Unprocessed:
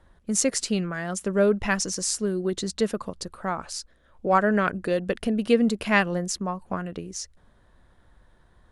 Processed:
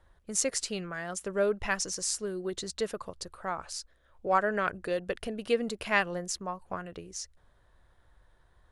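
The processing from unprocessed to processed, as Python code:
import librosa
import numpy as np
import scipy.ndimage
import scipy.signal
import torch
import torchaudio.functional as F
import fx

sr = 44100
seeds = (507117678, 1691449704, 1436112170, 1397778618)

y = fx.peak_eq(x, sr, hz=220.0, db=-9.5, octaves=1.0)
y = y * librosa.db_to_amplitude(-4.5)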